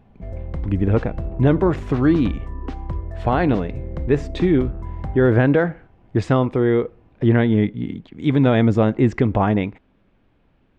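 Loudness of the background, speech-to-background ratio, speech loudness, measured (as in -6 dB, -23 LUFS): -31.5 LUFS, 12.0 dB, -19.5 LUFS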